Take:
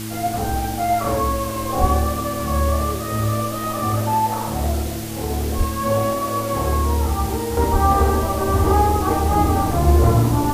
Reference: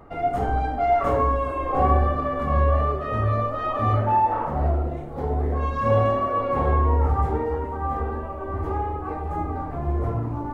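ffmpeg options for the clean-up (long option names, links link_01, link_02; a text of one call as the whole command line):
ffmpeg -i in.wav -filter_complex "[0:a]bandreject=frequency=109.3:width_type=h:width=4,bandreject=frequency=218.6:width_type=h:width=4,bandreject=frequency=327.9:width_type=h:width=4,asplit=3[link_01][link_02][link_03];[link_01]afade=type=out:start_time=1.8:duration=0.02[link_04];[link_02]highpass=frequency=140:width=0.5412,highpass=frequency=140:width=1.3066,afade=type=in:start_time=1.8:duration=0.02,afade=type=out:start_time=1.92:duration=0.02[link_05];[link_03]afade=type=in:start_time=1.92:duration=0.02[link_06];[link_04][link_05][link_06]amix=inputs=3:normalize=0,asplit=3[link_07][link_08][link_09];[link_07]afade=type=out:start_time=5.57:duration=0.02[link_10];[link_08]highpass=frequency=140:width=0.5412,highpass=frequency=140:width=1.3066,afade=type=in:start_time=5.57:duration=0.02,afade=type=out:start_time=5.69:duration=0.02[link_11];[link_09]afade=type=in:start_time=5.69:duration=0.02[link_12];[link_10][link_11][link_12]amix=inputs=3:normalize=0,asplit=3[link_13][link_14][link_15];[link_13]afade=type=out:start_time=7.72:duration=0.02[link_16];[link_14]highpass=frequency=140:width=0.5412,highpass=frequency=140:width=1.3066,afade=type=in:start_time=7.72:duration=0.02,afade=type=out:start_time=7.84:duration=0.02[link_17];[link_15]afade=type=in:start_time=7.84:duration=0.02[link_18];[link_16][link_17][link_18]amix=inputs=3:normalize=0,afwtdn=0.02,asetnsamples=nb_out_samples=441:pad=0,asendcmd='7.57 volume volume -10.5dB',volume=0dB" out.wav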